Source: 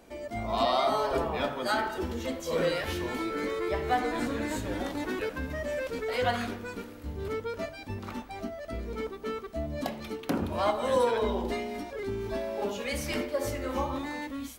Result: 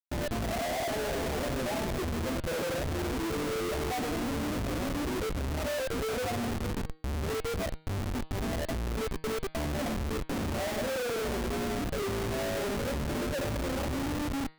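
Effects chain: steep low-pass 800 Hz 72 dB/oct; Schmitt trigger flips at -38 dBFS; de-hum 157.4 Hz, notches 30; gain +1 dB

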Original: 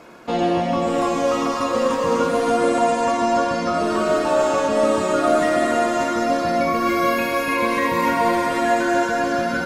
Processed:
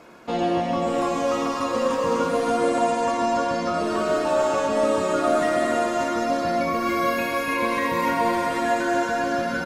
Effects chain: echo 0.13 s -14 dB; gain -3.5 dB

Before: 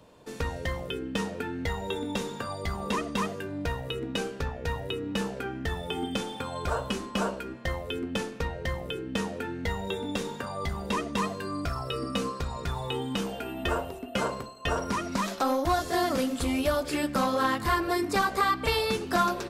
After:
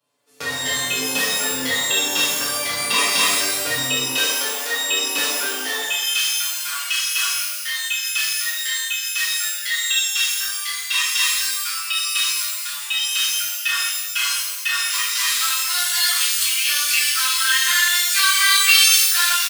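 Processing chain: gate with hold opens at -26 dBFS; HPF 82 Hz 24 dB/oct, from 4.09 s 250 Hz, from 5.82 s 1400 Hz; tilt +3.5 dB/oct; comb 7 ms, depth 75%; dynamic EQ 2800 Hz, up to +7 dB, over -37 dBFS, Q 0.94; shimmer reverb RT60 1 s, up +12 st, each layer -2 dB, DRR -6.5 dB; gain -3 dB

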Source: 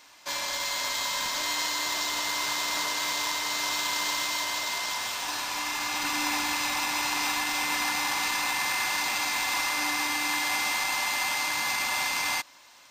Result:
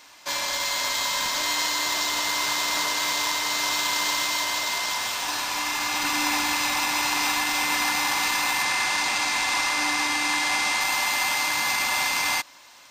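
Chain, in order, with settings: 8.63–10.81 LPF 10000 Hz 12 dB/oct; gain +4 dB

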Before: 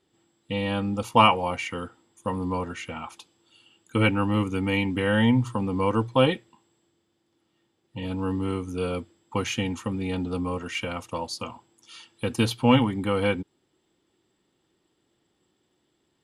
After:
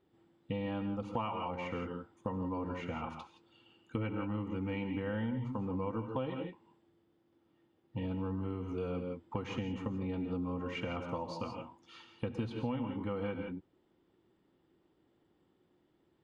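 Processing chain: high shelf 2300 Hz -11.5 dB; non-linear reverb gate 0.19 s rising, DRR 7 dB; compressor 6:1, threshold -34 dBFS, peak gain reduction 19 dB; air absorption 110 m

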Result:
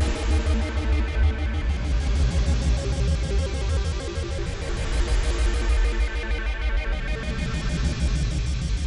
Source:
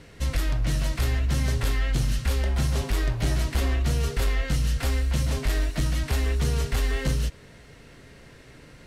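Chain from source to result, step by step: nonlinear frequency compression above 3600 Hz 1.5:1; Paulstretch 8.4×, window 0.25 s, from 3.6; shaped vibrato square 6.5 Hz, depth 250 cents

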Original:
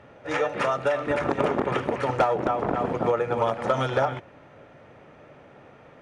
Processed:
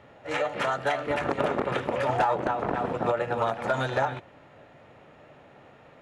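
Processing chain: painted sound rise, 1.91–2.35, 460–950 Hz -26 dBFS; formant shift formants +2 st; gain -2.5 dB

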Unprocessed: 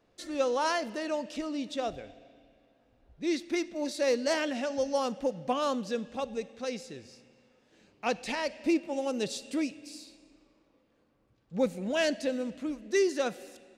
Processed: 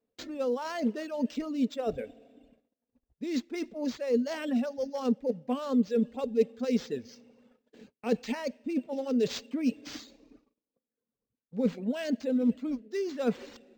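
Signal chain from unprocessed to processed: reverse; compressor 10:1, threshold -37 dBFS, peak gain reduction 15.5 dB; reverse; high shelf 5000 Hz +7 dB; small resonant body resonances 240/440 Hz, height 15 dB, ringing for 60 ms; gate -55 dBFS, range -24 dB; reverb removal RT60 1.2 s; decimation joined by straight lines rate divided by 4×; gain +3.5 dB

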